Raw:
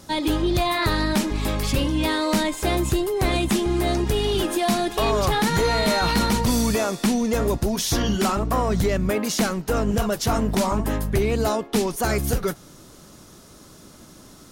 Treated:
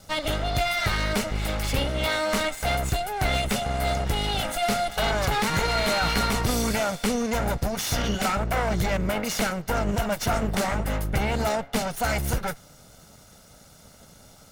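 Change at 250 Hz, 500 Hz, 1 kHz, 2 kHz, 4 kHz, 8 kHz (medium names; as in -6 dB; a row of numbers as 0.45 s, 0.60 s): -7.0 dB, -4.5 dB, -1.5 dB, +1.0 dB, -1.5 dB, -3.0 dB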